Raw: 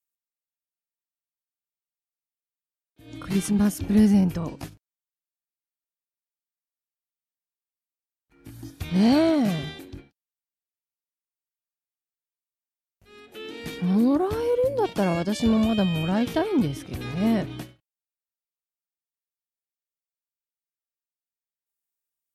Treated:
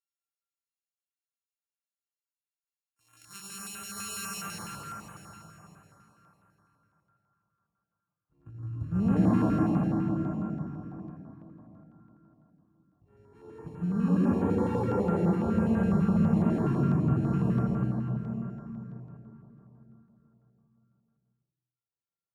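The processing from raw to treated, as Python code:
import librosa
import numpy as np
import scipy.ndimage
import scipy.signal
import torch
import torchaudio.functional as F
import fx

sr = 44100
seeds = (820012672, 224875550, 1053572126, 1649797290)

p1 = np.r_[np.sort(x[:len(x) // 32 * 32].reshape(-1, 32), axis=1).ravel(), x[len(x) // 32 * 32:]]
p2 = fx.low_shelf(p1, sr, hz=350.0, db=7.5)
p3 = fx.filter_sweep_bandpass(p2, sr, from_hz=6400.0, to_hz=280.0, start_s=4.21, end_s=4.88, q=0.7)
p4 = fx.graphic_eq(p3, sr, hz=(125, 250, 500, 4000), db=(7, -12, -4, -8))
p5 = p4 + fx.echo_single(p4, sr, ms=80, db=-6.0, dry=0)
p6 = fx.rev_plate(p5, sr, seeds[0], rt60_s=4.3, hf_ratio=0.65, predelay_ms=85, drr_db=-6.5)
p7 = fx.filter_held_notch(p6, sr, hz=12.0, low_hz=600.0, high_hz=4900.0)
y = F.gain(torch.from_numpy(p7), -6.5).numpy()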